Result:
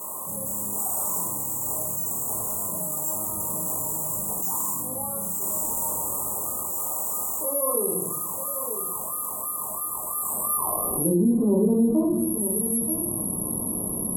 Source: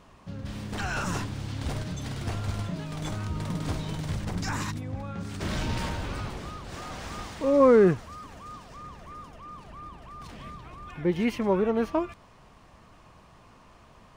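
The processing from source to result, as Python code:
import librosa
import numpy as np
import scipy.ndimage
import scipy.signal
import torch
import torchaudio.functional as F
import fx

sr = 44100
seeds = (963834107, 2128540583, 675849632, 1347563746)

p1 = fx.peak_eq(x, sr, hz=1500.0, db=-11.5, octaves=0.44)
p2 = fx.filter_sweep_bandpass(p1, sr, from_hz=6400.0, to_hz=250.0, start_s=9.98, end_s=11.12, q=2.0)
p3 = fx.high_shelf(p2, sr, hz=4800.0, db=-8.5)
p4 = p3 + fx.echo_single(p3, sr, ms=934, db=-22.0, dry=0)
p5 = fx.room_shoebox(p4, sr, seeds[0], volume_m3=61.0, walls='mixed', distance_m=1.2)
p6 = (np.kron(p5[::4], np.eye(4)[0]) * 4)[:len(p5)]
p7 = scipy.signal.sosfilt(scipy.signal.cheby1(4, 1.0, [1100.0, 7800.0], 'bandstop', fs=sr, output='sos'), p6)
p8 = fx.env_lowpass_down(p7, sr, base_hz=2900.0, full_db=-16.0)
p9 = fx.env_flatten(p8, sr, amount_pct=70)
y = p9 * 10.0 ** (-1.5 / 20.0)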